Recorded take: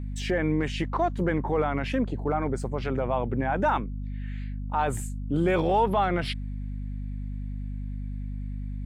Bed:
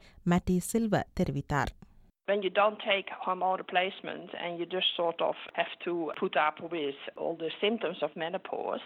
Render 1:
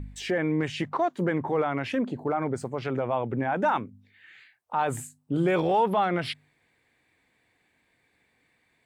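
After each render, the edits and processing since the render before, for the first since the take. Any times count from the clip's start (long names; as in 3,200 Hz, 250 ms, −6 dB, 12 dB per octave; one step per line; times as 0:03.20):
hum removal 50 Hz, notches 5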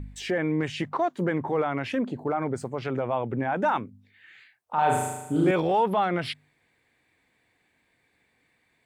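0:04.74–0:05.51: flutter between parallel walls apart 6.6 metres, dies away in 1 s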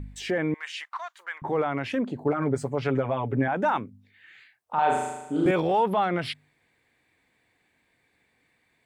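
0:00.54–0:01.42: high-pass filter 1,100 Hz 24 dB per octave
0:02.25–0:03.48: comb filter 7.1 ms, depth 82%
0:04.79–0:05.46: band-pass filter 230–6,100 Hz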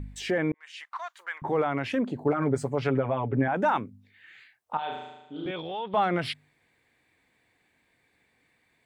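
0:00.52–0:01.06: fade in
0:02.89–0:03.54: high-frequency loss of the air 170 metres
0:04.77–0:05.94: transistor ladder low-pass 3,700 Hz, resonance 75%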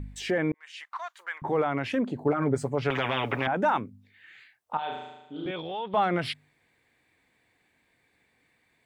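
0:02.90–0:03.47: every bin compressed towards the loudest bin 4 to 1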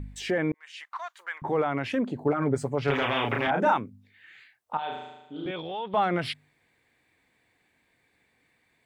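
0:02.84–0:03.74: double-tracking delay 35 ms −3 dB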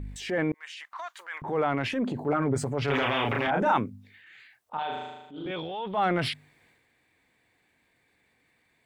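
transient designer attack −6 dB, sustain +6 dB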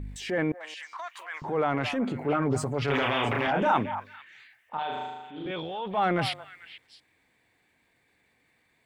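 echo through a band-pass that steps 222 ms, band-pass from 870 Hz, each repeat 1.4 octaves, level −9 dB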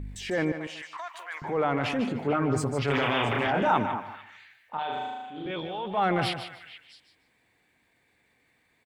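repeating echo 150 ms, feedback 21%, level −10 dB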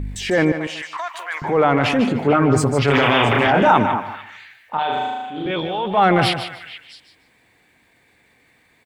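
level +10.5 dB
brickwall limiter −3 dBFS, peak gain reduction 2 dB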